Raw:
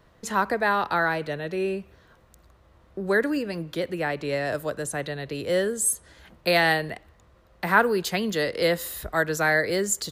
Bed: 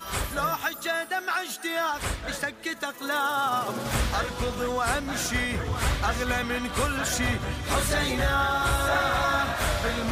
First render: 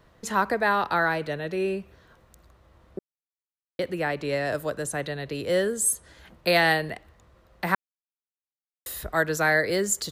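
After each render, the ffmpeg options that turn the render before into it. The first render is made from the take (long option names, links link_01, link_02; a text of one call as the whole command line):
ffmpeg -i in.wav -filter_complex "[0:a]asplit=5[link_01][link_02][link_03][link_04][link_05];[link_01]atrim=end=2.99,asetpts=PTS-STARTPTS,afade=type=out:start_time=2.986:duration=0.004:curve=hsin[link_06];[link_02]atrim=start=2.99:end=3.79,asetpts=PTS-STARTPTS,volume=0[link_07];[link_03]atrim=start=3.79:end=7.75,asetpts=PTS-STARTPTS,afade=type=in:duration=0.004:curve=hsin,afade=type=out:start_time=3.956:duration=0.004:curve=hsin[link_08];[link_04]atrim=start=7.75:end=8.86,asetpts=PTS-STARTPTS,volume=0[link_09];[link_05]atrim=start=8.86,asetpts=PTS-STARTPTS,afade=type=in:duration=0.004:curve=hsin[link_10];[link_06][link_07][link_08][link_09][link_10]concat=n=5:v=0:a=1" out.wav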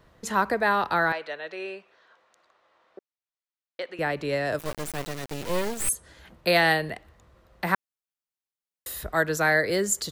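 ffmpeg -i in.wav -filter_complex "[0:a]asettb=1/sr,asplit=3[link_01][link_02][link_03];[link_01]atrim=end=1.124[link_04];[link_02]atrim=start=1.12:end=3.99,asetpts=PTS-STARTPTS,afade=type=in:duration=0.004:curve=qsin,afade=type=out:start_time=2.866:duration=0.004:curve=qsin,highpass=650,lowpass=4800[link_05];[link_03]atrim=start=3.986[link_06];[link_04][link_05]acrossfade=duration=0.004:curve1=hsin:curve2=qsin[link_07];[link_07][link_06]acrossfade=duration=0.004:curve1=qsin:curve2=hsin,asettb=1/sr,asplit=3[link_08][link_09][link_10];[link_08]atrim=end=4.594[link_11];[link_09]atrim=start=4.59:end=5.89,asetpts=PTS-STARTPTS,afade=type=in:duration=0.004:curve=qsin,afade=type=out:start_time=1.296:duration=0.004:curve=qsin,acrusher=bits=3:dc=4:mix=0:aa=0.000001[link_12];[link_10]atrim=start=5.886[link_13];[link_11][link_12]acrossfade=duration=0.004:curve1=hsin:curve2=qsin[link_14];[link_14][link_13]acrossfade=duration=0.004:curve1=qsin:curve2=hsin" out.wav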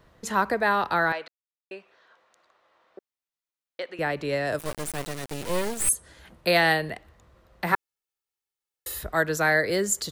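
ffmpeg -i in.wav -filter_complex "[0:a]asettb=1/sr,asplit=3[link_01][link_02][link_03];[link_01]atrim=end=4.474[link_04];[link_02]atrim=start=4.47:end=6.47,asetpts=PTS-STARTPTS,afade=type=in:duration=0.004:curve=qsin,afade=type=out:start_time=1.996:duration=0.004:curve=qsin,equalizer=frequency=9500:width_type=o:width=0.48:gain=5.5[link_05];[link_03]atrim=start=6.466[link_06];[link_04][link_05]acrossfade=duration=0.004:curve1=hsin:curve2=qsin[link_07];[link_07][link_06]acrossfade=duration=0.004:curve1=qsin:curve2=hsin,asettb=1/sr,asplit=3[link_08][link_09][link_10];[link_08]atrim=end=7.724[link_11];[link_09]atrim=start=7.72:end=8.99,asetpts=PTS-STARTPTS,afade=type=in:duration=0.004:curve=qsin,afade=type=out:start_time=1.266:duration=0.004:curve=qsin,aecho=1:1:2.3:0.72,atrim=end_sample=56007[link_12];[link_10]atrim=start=8.986[link_13];[link_11][link_12]acrossfade=duration=0.004:curve1=hsin:curve2=qsin[link_14];[link_14][link_13]acrossfade=duration=0.004:curve1=qsin:curve2=hsin,asplit=3[link_15][link_16][link_17];[link_15]atrim=end=1.28,asetpts=PTS-STARTPTS,afade=type=out:start_time=1.276:duration=0.004:curve=hsin[link_18];[link_16]atrim=start=1.28:end=1.71,asetpts=PTS-STARTPTS,volume=0[link_19];[link_17]atrim=start=1.71,asetpts=PTS-STARTPTS,afade=type=in:duration=0.004:curve=hsin[link_20];[link_18][link_19][link_20]concat=n=3:v=0:a=1" out.wav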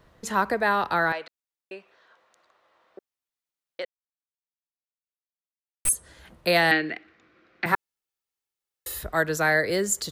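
ffmpeg -i in.wav -filter_complex "[0:a]asettb=1/sr,asplit=3[link_01][link_02][link_03];[link_01]atrim=end=6.714[link_04];[link_02]atrim=start=6.71:end=7.66,asetpts=PTS-STARTPTS,afade=type=in:duration=0.004:curve=qsin,afade=type=out:start_time=0.946:duration=0.004:curve=qsin,highpass=240,equalizer=frequency=310:width_type=q:width=4:gain=10,equalizer=frequency=580:width_type=q:width=4:gain=-8,equalizer=frequency=940:width_type=q:width=4:gain=-9,equalizer=frequency=1500:width_type=q:width=4:gain=7,equalizer=frequency=2300:width_type=q:width=4:gain=10,lowpass=frequency=5300:width=0.5412,lowpass=frequency=5300:width=1.3066[link_05];[link_03]atrim=start=7.656[link_06];[link_04][link_05]acrossfade=duration=0.004:curve1=hsin:curve2=qsin[link_07];[link_07][link_06]acrossfade=duration=0.004:curve1=qsin:curve2=hsin,asplit=3[link_08][link_09][link_10];[link_08]atrim=end=3.85,asetpts=PTS-STARTPTS,afade=type=out:start_time=3.846:duration=0.004:curve=hsin[link_11];[link_09]atrim=start=3.85:end=5.85,asetpts=PTS-STARTPTS,volume=0[link_12];[link_10]atrim=start=5.85,asetpts=PTS-STARTPTS,afade=type=in:duration=0.004:curve=hsin[link_13];[link_11][link_12][link_13]concat=n=3:v=0:a=1" out.wav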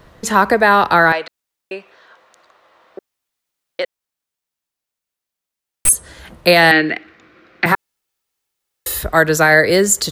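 ffmpeg -i in.wav -af "alimiter=level_in=12dB:limit=-1dB:release=50:level=0:latency=1" out.wav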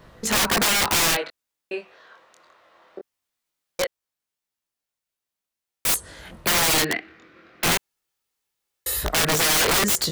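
ffmpeg -i in.wav -af "flanger=delay=18:depth=6.4:speed=0.21,aeval=exprs='(mod(5.31*val(0)+1,2)-1)/5.31':channel_layout=same" out.wav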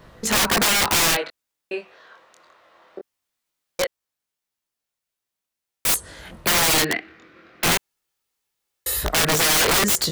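ffmpeg -i in.wav -af "volume=1.5dB" out.wav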